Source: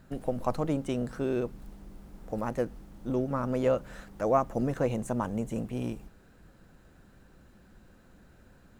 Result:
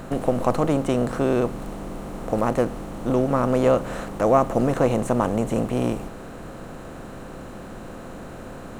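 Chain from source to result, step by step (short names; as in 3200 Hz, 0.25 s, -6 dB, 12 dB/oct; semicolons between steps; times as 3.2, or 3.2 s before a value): per-bin compression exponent 0.6; gain +5.5 dB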